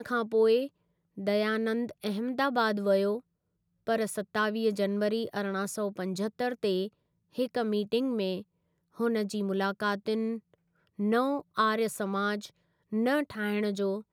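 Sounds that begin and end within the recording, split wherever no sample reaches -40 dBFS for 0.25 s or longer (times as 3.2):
1.18–3.19
3.87–6.88
7.38–8.42
9–10.38
10.99–12.47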